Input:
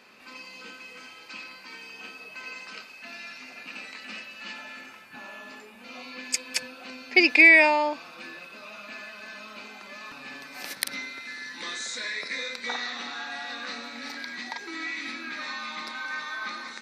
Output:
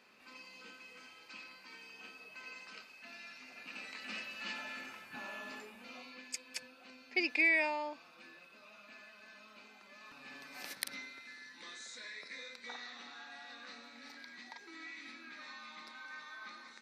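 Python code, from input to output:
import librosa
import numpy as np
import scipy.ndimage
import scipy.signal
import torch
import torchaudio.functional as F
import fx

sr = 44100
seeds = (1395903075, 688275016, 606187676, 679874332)

y = fx.gain(x, sr, db=fx.line((3.44, -10.0), (4.26, -3.0), (5.62, -3.0), (6.33, -14.5), (9.91, -14.5), (10.53, -8.0), (11.57, -15.0)))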